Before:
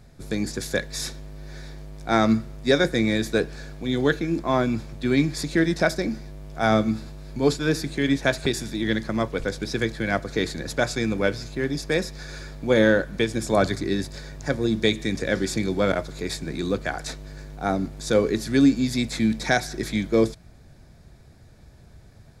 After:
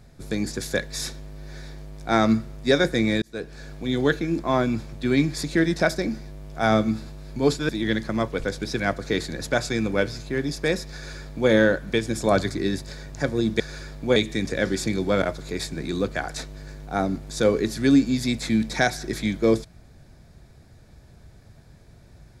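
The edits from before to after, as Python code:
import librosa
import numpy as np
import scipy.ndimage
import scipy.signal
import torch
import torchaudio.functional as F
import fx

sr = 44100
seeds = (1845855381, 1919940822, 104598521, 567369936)

y = fx.edit(x, sr, fx.fade_in_span(start_s=3.22, length_s=0.52),
    fx.cut(start_s=7.69, length_s=1.0),
    fx.cut(start_s=9.8, length_s=0.26),
    fx.duplicate(start_s=12.2, length_s=0.56, to_s=14.86), tone=tone)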